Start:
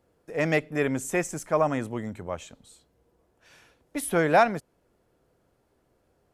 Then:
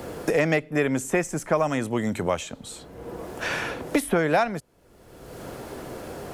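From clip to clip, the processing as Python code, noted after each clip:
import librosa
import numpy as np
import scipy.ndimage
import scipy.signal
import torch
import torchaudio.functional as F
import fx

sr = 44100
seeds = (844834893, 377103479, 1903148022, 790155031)

y = fx.band_squash(x, sr, depth_pct=100)
y = y * librosa.db_to_amplitude(2.5)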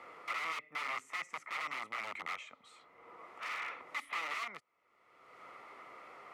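y = (np.mod(10.0 ** (22.0 / 20.0) * x + 1.0, 2.0) - 1.0) / 10.0 ** (22.0 / 20.0)
y = fx.double_bandpass(y, sr, hz=1600.0, octaves=0.71)
y = y * librosa.db_to_amplitude(-1.0)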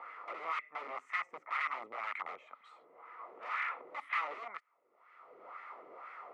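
y = fx.filter_lfo_bandpass(x, sr, shape='sine', hz=2.0, low_hz=410.0, high_hz=1700.0, q=2.0)
y = y * librosa.db_to_amplitude(8.0)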